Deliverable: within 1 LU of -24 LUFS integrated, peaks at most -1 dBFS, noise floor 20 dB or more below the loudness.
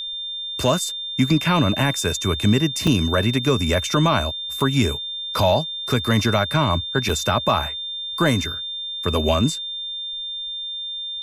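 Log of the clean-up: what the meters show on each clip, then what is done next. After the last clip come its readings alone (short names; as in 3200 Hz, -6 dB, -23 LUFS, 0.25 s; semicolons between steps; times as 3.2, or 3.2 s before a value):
dropouts 3; longest dropout 4.5 ms; steady tone 3600 Hz; tone level -27 dBFS; loudness -21.0 LUFS; peak -7.0 dBFS; loudness target -24.0 LUFS
-> interpolate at 2.87/4.6/7.09, 4.5 ms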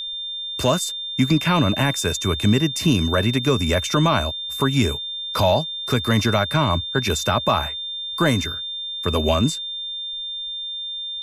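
dropouts 0; steady tone 3600 Hz; tone level -27 dBFS
-> notch 3600 Hz, Q 30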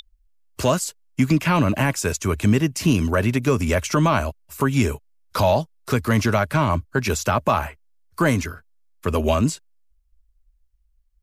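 steady tone none; loudness -21.5 LUFS; peak -8.0 dBFS; loudness target -24.0 LUFS
-> gain -2.5 dB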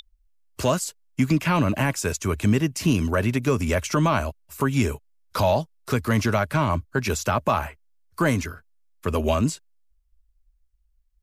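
loudness -24.0 LUFS; peak -10.5 dBFS; noise floor -67 dBFS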